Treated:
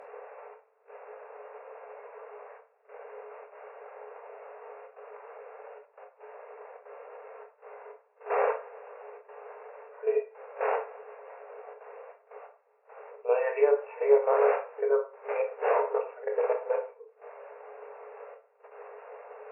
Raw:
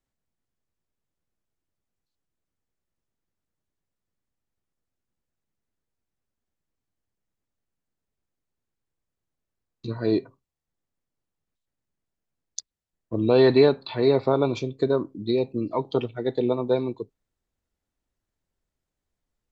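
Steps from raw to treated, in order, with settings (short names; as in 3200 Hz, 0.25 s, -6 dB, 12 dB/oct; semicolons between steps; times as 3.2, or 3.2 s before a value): wind noise 520 Hz -29 dBFS; level quantiser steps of 22 dB; pre-echo 41 ms -14 dB; FFT band-pass 400–2800 Hz; treble ducked by the level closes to 2000 Hz, closed at -20 dBFS; reverb RT60 0.35 s, pre-delay 17 ms, DRR 2 dB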